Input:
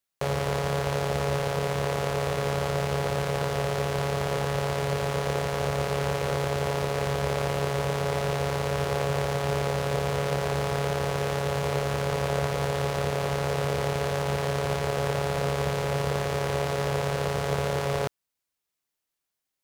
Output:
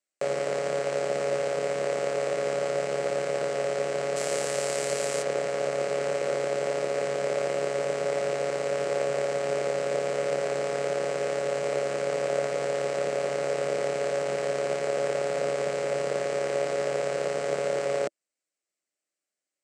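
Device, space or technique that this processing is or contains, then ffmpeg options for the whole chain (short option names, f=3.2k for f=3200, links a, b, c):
television speaker: -filter_complex "[0:a]highpass=f=200:w=0.5412,highpass=f=200:w=1.3066,equalizer=f=330:t=q:w=4:g=5,equalizer=f=580:t=q:w=4:g=9,equalizer=f=950:t=q:w=4:g=-9,equalizer=f=2.1k:t=q:w=4:g=3,equalizer=f=3.5k:t=q:w=4:g=-6,equalizer=f=7.9k:t=q:w=4:g=8,lowpass=f=8.5k:w=0.5412,lowpass=f=8.5k:w=1.3066,asettb=1/sr,asplit=3[a][b][c];[a]atrim=end=4.164[d];[b]atrim=start=4.16:end=5.23,asetpts=PTS-STARTPTS,afade=t=in:d=0.004:c=qsin,afade=t=out:st=1.066:d=0.004:c=qsin,aemphasis=mode=production:type=75fm[e];[c]atrim=start=5.226[f];[d][e]acrossfade=d=0.004:c1=hsin:c2=qsin[g];[g][f]acrossfade=d=0.004:c1=qsin:c2=hsin,volume=-3dB"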